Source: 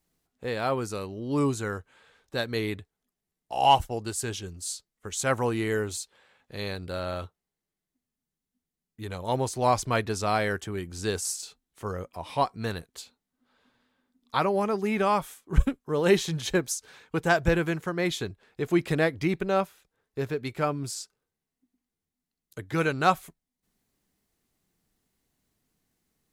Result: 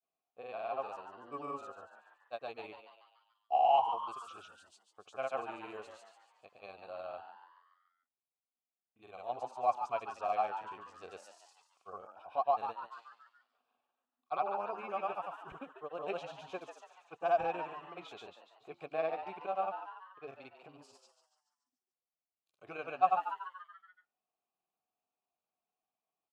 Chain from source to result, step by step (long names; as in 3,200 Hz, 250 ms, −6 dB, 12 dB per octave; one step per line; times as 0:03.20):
formant filter a
granular cloud, pitch spread up and down by 0 semitones
on a send: echo with shifted repeats 143 ms, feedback 51%, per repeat +120 Hz, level −9 dB